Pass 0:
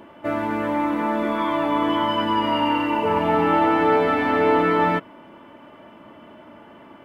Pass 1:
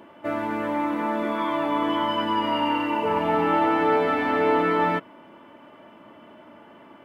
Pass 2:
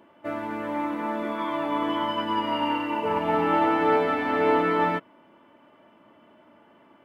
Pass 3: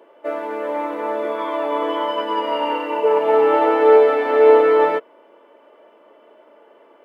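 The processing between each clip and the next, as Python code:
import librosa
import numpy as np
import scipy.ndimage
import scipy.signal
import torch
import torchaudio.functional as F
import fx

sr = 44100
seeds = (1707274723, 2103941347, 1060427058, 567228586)

y1 = fx.low_shelf(x, sr, hz=81.0, db=-10.5)
y1 = y1 * 10.0 ** (-2.5 / 20.0)
y2 = fx.upward_expand(y1, sr, threshold_db=-34.0, expansion=1.5)
y3 = fx.highpass_res(y2, sr, hz=460.0, q=4.2)
y3 = y3 * 10.0 ** (2.0 / 20.0)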